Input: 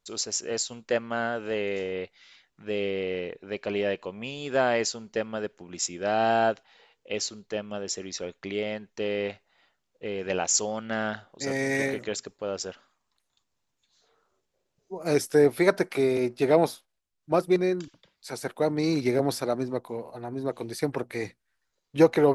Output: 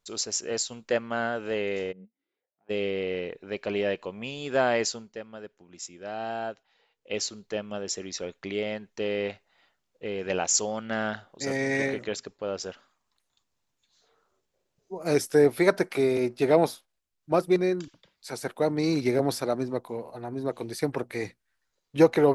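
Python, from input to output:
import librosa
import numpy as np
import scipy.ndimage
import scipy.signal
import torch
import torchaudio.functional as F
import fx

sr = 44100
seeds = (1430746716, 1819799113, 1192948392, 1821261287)

y = fx.bandpass_q(x, sr, hz=fx.line((1.91, 150.0), (2.69, 850.0)), q=9.6, at=(1.91, 2.69), fade=0.02)
y = fx.lowpass(y, sr, hz=6000.0, slope=12, at=(11.56, 12.63))
y = fx.edit(y, sr, fx.fade_down_up(start_s=4.98, length_s=2.15, db=-10.0, fade_s=0.2, curve='qua'), tone=tone)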